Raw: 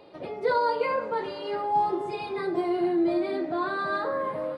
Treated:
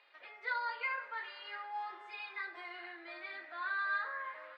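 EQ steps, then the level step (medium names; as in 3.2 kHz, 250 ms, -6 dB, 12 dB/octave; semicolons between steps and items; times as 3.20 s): ladder band-pass 2.1 kHz, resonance 45%; +6.5 dB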